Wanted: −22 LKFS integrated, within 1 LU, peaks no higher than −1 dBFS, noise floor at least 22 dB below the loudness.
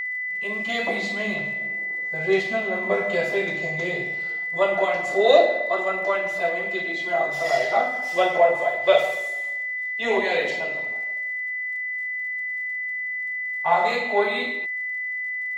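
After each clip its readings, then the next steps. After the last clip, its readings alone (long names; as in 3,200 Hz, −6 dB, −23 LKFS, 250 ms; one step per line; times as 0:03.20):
crackle rate 61 per second; interfering tone 2,000 Hz; level of the tone −26 dBFS; integrated loudness −23.0 LKFS; sample peak −3.5 dBFS; target loudness −22.0 LKFS
→ click removal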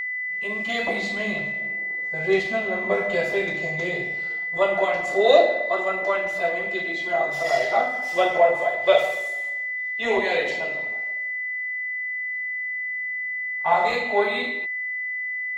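crackle rate 0.32 per second; interfering tone 2,000 Hz; level of the tone −26 dBFS
→ notch filter 2,000 Hz, Q 30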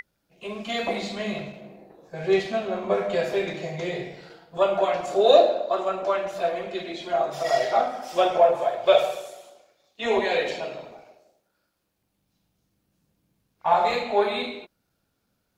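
interfering tone none found; integrated loudness −24.0 LKFS; sample peak −4.5 dBFS; target loudness −22.0 LKFS
→ level +2 dB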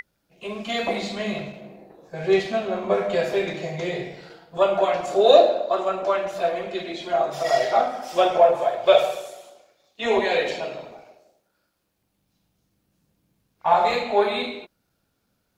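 integrated loudness −22.0 LKFS; sample peak −2.5 dBFS; background noise floor −73 dBFS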